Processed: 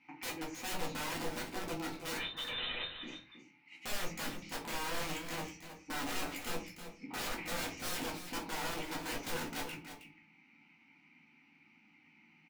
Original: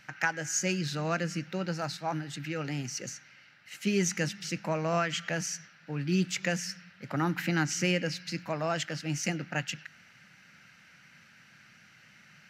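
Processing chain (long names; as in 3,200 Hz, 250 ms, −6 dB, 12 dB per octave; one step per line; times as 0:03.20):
formant filter u
wrap-around overflow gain 42 dB
0:02.17–0:03.03: voice inversion scrambler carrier 3,900 Hz
single-tap delay 318 ms −10 dB
rectangular room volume 150 cubic metres, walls furnished, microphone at 2 metres
level +3.5 dB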